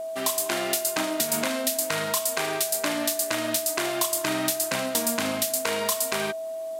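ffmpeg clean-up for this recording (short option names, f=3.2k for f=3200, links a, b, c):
-af "bandreject=f=650:w=30"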